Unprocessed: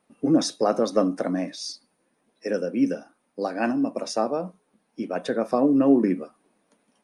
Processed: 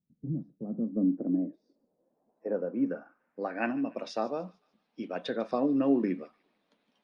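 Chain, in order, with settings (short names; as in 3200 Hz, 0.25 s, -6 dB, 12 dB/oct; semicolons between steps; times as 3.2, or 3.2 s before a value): low-pass sweep 140 Hz -> 3800 Hz, 0.33–4.22; thin delay 0.147 s, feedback 41%, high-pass 1900 Hz, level -18.5 dB; gain -7.5 dB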